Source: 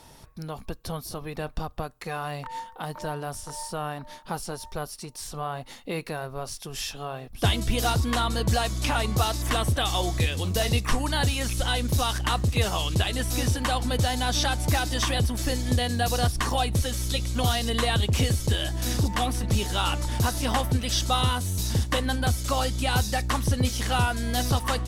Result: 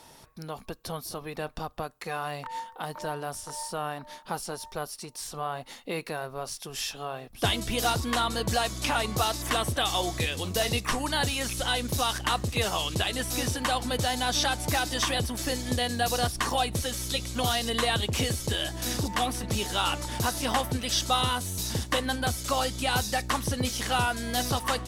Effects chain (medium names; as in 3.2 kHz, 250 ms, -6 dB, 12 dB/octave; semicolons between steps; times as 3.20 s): bass shelf 140 Hz -11.5 dB